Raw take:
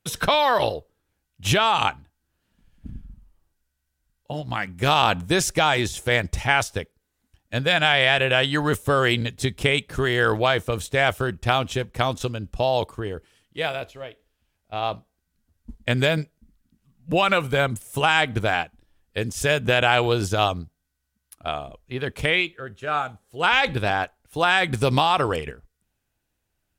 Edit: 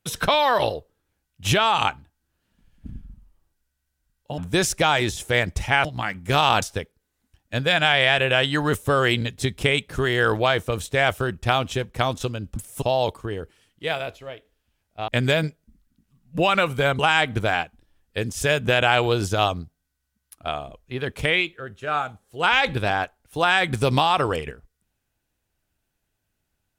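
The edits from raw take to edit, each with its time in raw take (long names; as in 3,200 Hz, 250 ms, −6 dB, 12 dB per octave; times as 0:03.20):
0:04.38–0:05.15: move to 0:06.62
0:14.82–0:15.82: remove
0:17.73–0:17.99: move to 0:12.56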